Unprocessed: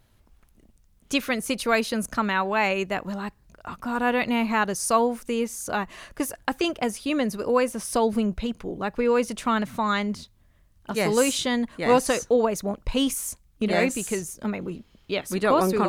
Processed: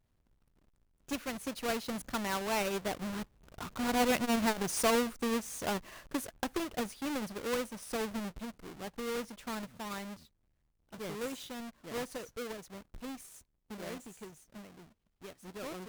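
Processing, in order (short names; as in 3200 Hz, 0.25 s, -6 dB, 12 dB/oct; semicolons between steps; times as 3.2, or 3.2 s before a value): half-waves squared off; Doppler pass-by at 4.5, 7 m/s, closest 9.6 m; core saturation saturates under 280 Hz; gain -8.5 dB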